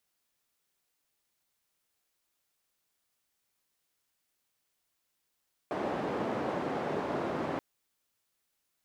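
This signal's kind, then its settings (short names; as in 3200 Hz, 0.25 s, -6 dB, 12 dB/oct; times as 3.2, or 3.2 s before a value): noise band 180–660 Hz, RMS -33.5 dBFS 1.88 s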